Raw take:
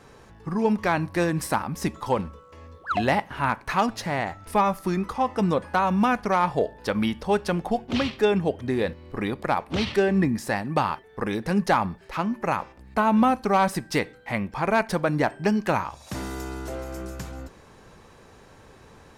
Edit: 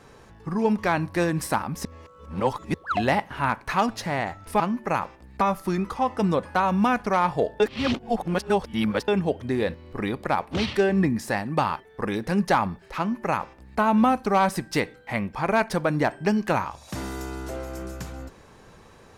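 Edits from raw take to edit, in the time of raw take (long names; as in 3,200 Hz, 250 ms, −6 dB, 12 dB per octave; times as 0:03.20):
0:01.85–0:02.74: reverse
0:06.79–0:08.27: reverse
0:12.17–0:12.98: duplicate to 0:04.60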